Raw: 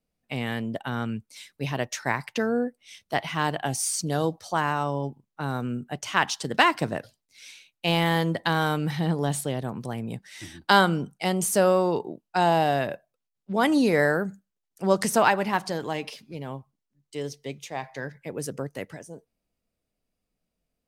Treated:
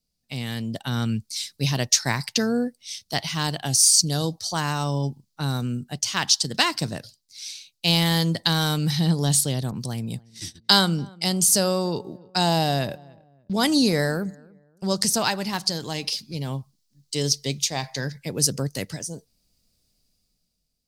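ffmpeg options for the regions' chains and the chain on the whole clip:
-filter_complex "[0:a]asettb=1/sr,asplit=3[a][b][c];[a]atrim=end=9.714[d];[b]atrim=start=9.71:end=15.21,asetpts=PTS-STARTPTS,afade=t=in:d=0.004:c=qsin,afade=t=out:st=5.496:d=0.004:c=qsin,agate=range=-25dB:threshold=-43dB:ratio=16:release=100:detection=peak,asplit=2[e][f];[f]adelay=290,lowpass=f=1k:p=1,volume=-23dB,asplit=2[g][h];[h]adelay=290,lowpass=f=1k:p=1,volume=0.37[i];[e][g][i]amix=inputs=3:normalize=0,atrim=end_sample=242550,adynamicequalizer=threshold=0.02:dfrequency=1500:dqfactor=0.7:tfrequency=1500:tqfactor=0.7:attack=5:release=100:ratio=0.375:range=3:mode=cutabove:tftype=highshelf[j];[c]atrim=start=15.206[k];[d][j]acrossfade=d=0.004:c1=hsin:c2=qsin[l];[l][k]acrossfade=d=0.004:c1=qsin:c2=hsin,bass=f=250:g=10,treble=f=4k:g=13,dynaudnorm=f=160:g=11:m=11.5dB,equalizer=f=4.6k:w=1.4:g=12.5,volume=-8dB"

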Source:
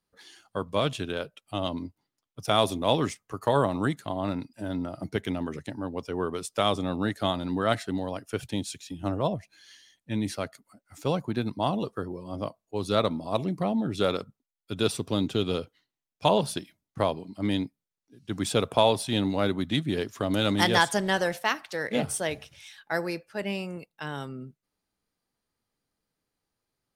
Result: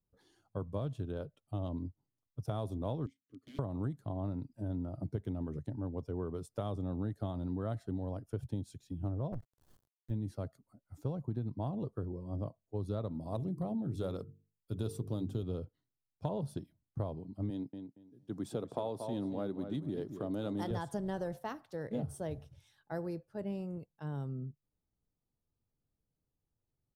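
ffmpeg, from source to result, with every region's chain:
-filter_complex "[0:a]asettb=1/sr,asplit=3[a][b][c];[a]atrim=end=3.064[d];[b]atrim=start=3.06:end=3.59,asetpts=PTS-STARTPTS,afade=t=in:d=0.004:c=qsin,afade=t=out:st=0.526:d=0.004:c=qsin,aeval=exprs='(mod(10.6*val(0)+1,2)-1)/10.6':c=same,asplit=3[e][f][g];[e]bandpass=f=270:t=q:w=8,volume=0dB[h];[f]bandpass=f=2.29k:t=q:w=8,volume=-6dB[i];[g]bandpass=f=3.01k:t=q:w=8,volume=-9dB[j];[h][i][j]amix=inputs=3:normalize=0,highshelf=f=2.5k:g=10[k];[c]atrim=start=3.586[l];[d][k]acrossfade=d=0.004:c1=hsin:c2=qsin[m];[m][l]acrossfade=d=0.004:c1=qsin:c2=hsin,asettb=1/sr,asplit=3[n][o][p];[n]atrim=end=9.324[q];[o]atrim=start=9.32:end=10.11,asetpts=PTS-STARTPTS,afade=t=in:d=0.004:c=qsin,afade=t=out:st=0.786:d=0.004:c=qsin,acrusher=bits=5:dc=4:mix=0:aa=0.000001,adynamicequalizer=threshold=0.002:dfrequency=2900:dqfactor=0.7:tfrequency=2900:tqfactor=0.7:attack=5:release=100:ratio=0.375:range=3:mode=cutabove:tftype=highshelf[r];[p]atrim=start=10.106[s];[q][r]acrossfade=d=0.004:c1=hsin:c2=qsin[t];[t][s]acrossfade=d=0.004:c1=qsin:c2=hsin,asettb=1/sr,asplit=3[u][v][w];[u]atrim=end=13.124[x];[v]atrim=start=13.12:end=15.43,asetpts=PTS-STARTPTS,afade=t=in:d=0.004:c=qsin,afade=t=out:st=2.306:d=0.004:c=qsin,highshelf=f=5.2k:g=10.5,bandreject=f=50:t=h:w=6,bandreject=f=100:t=h:w=6,bandreject=f=150:t=h:w=6,bandreject=f=200:t=h:w=6,bandreject=f=250:t=h:w=6,bandreject=f=300:t=h:w=6,bandreject=f=350:t=h:w=6,bandreject=f=400:t=h:w=6,bandreject=f=450:t=h:w=6[y];[w]atrim=start=15.426[z];[x][y]acrossfade=d=0.004:c1=hsin:c2=qsin[aa];[aa][z]acrossfade=d=0.004:c1=qsin:c2=hsin,asettb=1/sr,asplit=3[ab][ac][ad];[ab]atrim=end=17.504[ae];[ac]atrim=start=17.5:end=20.71,asetpts=PTS-STARTPTS,afade=t=in:d=0.004:c=qsin,afade=t=out:st=3.206:d=0.004:c=qsin,highpass=220,asplit=2[af][ag];[ag]adelay=231,lowpass=f=3.5k:p=1,volume=-10dB,asplit=2[ah][ai];[ai]adelay=231,lowpass=f=3.5k:p=1,volume=0.2,asplit=2[aj][ak];[ak]adelay=231,lowpass=f=3.5k:p=1,volume=0.2[al];[af][ah][aj][al]amix=inputs=4:normalize=0,atrim=end_sample=141561[am];[ad]atrim=start=20.706[an];[ae][am]acrossfade=d=0.004:c1=hsin:c2=qsin[ao];[ao][an]acrossfade=d=0.004:c1=qsin:c2=hsin,firequalizer=gain_entry='entry(130,0);entry(190,-8);entry(2300,-30);entry(3400,-25);entry(7500,-24);entry(14000,-19)':delay=0.05:min_phase=1,acompressor=threshold=-36dB:ratio=6,volume=3.5dB"

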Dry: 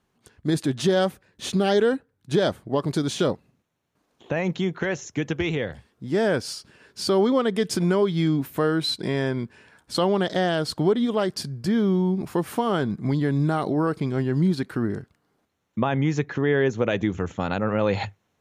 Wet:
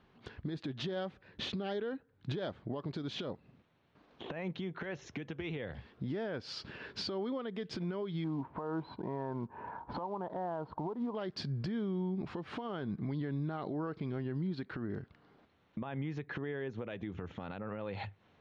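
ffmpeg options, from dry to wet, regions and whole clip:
-filter_complex "[0:a]asettb=1/sr,asplit=3[a][b][c];[a]atrim=end=8.244[d];[b]atrim=start=8.24:end=11.15,asetpts=PTS-STARTPTS,afade=t=in:d=0.004:c=qsin,afade=t=out:st=2.906:d=0.004:c=qsin,lowpass=f=940:t=q:w=6.6,acrusher=bits=8:mode=log:mix=0:aa=0.000001[e];[c]atrim=start=11.146[f];[d][e]acrossfade=d=0.004:c1=hsin:c2=qsin[g];[g][f]acrossfade=d=0.004:c1=qsin:c2=hsin,lowpass=f=4.1k:w=0.5412,lowpass=f=4.1k:w=1.3066,acompressor=threshold=-35dB:ratio=12,alimiter=level_in=11.5dB:limit=-24dB:level=0:latency=1:release=221,volume=-11.5dB,volume=6dB"

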